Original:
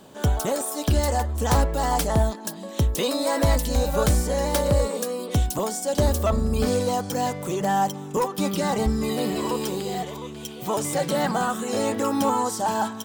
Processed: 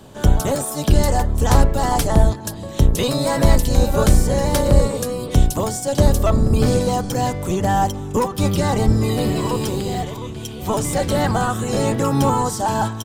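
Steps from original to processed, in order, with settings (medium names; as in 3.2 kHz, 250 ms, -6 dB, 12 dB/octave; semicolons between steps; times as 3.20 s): octave divider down 1 oct, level +3 dB; resampled via 32 kHz; trim +3.5 dB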